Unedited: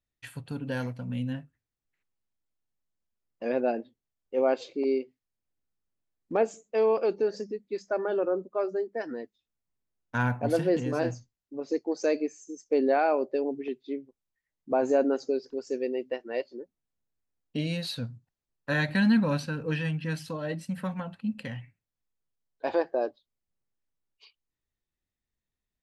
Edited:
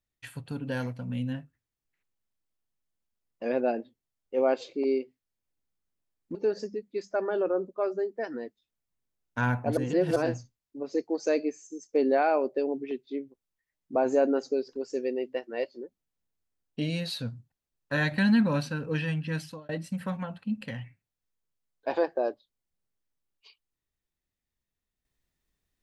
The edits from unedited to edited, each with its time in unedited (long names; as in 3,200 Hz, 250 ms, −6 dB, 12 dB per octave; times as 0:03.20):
0:06.35–0:07.12: remove
0:10.54–0:10.93: reverse
0:20.17–0:20.46: fade out